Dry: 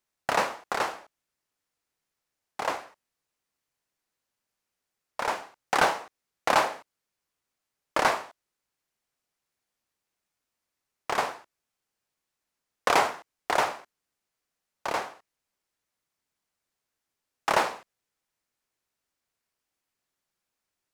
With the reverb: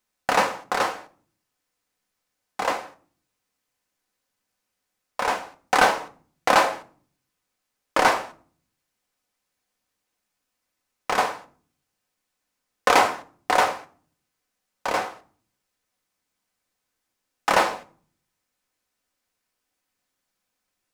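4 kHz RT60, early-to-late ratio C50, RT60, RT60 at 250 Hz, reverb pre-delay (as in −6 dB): 0.35 s, 18.5 dB, 0.45 s, 0.80 s, 4 ms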